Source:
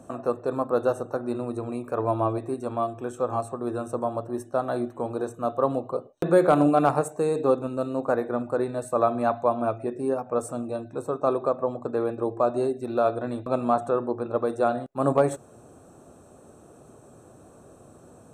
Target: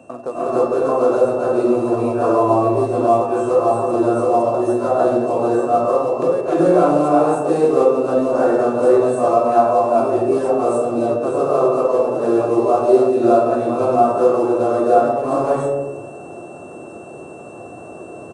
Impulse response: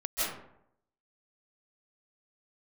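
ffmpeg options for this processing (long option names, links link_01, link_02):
-filter_complex "[0:a]highpass=frequency=69:width=0.5412,highpass=frequency=69:width=1.3066,equalizer=frequency=600:width_type=o:width=2.3:gain=8,asplit=2[link_01][link_02];[link_02]acompressor=threshold=-26dB:ratio=12,volume=-2.5dB[link_03];[link_01][link_03]amix=inputs=2:normalize=0,alimiter=limit=-8.5dB:level=0:latency=1:release=357,acrusher=bits=7:mode=log:mix=0:aa=0.000001,aeval=exprs='val(0)+0.00447*sin(2*PI*2700*n/s)':channel_layout=same,asplit=2[link_04][link_05];[link_05]adelay=28,volume=-14dB[link_06];[link_04][link_06]amix=inputs=2:normalize=0[link_07];[1:a]atrim=start_sample=2205,asetrate=23814,aresample=44100[link_08];[link_07][link_08]afir=irnorm=-1:irlink=0,aresample=22050,aresample=44100,volume=-8.5dB"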